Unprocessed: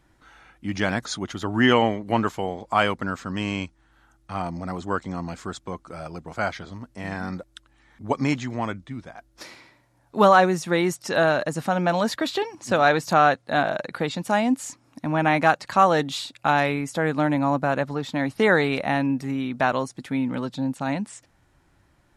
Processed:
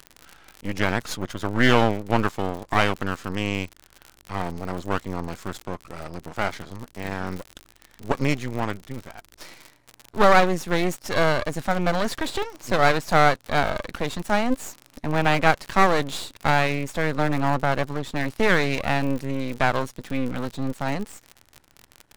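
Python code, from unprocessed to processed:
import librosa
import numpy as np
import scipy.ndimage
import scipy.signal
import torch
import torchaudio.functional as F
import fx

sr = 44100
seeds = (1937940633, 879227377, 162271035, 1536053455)

y = fx.dmg_crackle(x, sr, seeds[0], per_s=110.0, level_db=-31.0)
y = np.maximum(y, 0.0)
y = y * 10.0 ** (3.0 / 20.0)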